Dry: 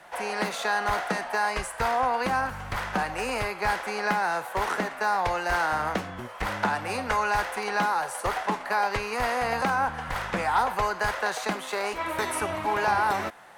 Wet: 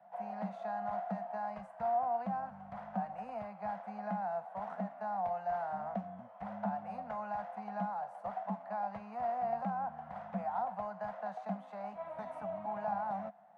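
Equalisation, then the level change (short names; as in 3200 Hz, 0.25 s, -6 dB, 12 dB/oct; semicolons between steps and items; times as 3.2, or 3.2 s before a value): double band-pass 370 Hz, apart 1.8 oct; -2.5 dB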